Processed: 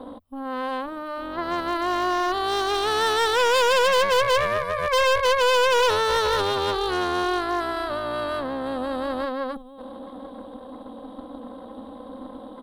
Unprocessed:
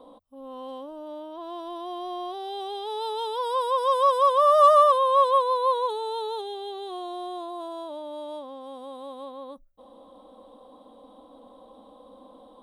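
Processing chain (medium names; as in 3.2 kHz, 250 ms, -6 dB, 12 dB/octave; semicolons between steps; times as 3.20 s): fifteen-band graphic EQ 100 Hz +7 dB, 250 Hz +8 dB, 6.3 kHz -10 dB; compressor with a negative ratio -23 dBFS, ratio -0.5; delay 849 ms -15.5 dB; Chebyshev shaper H 6 -9 dB, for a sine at -13.5 dBFS; hard clipper -20 dBFS, distortion -11 dB; trim +5 dB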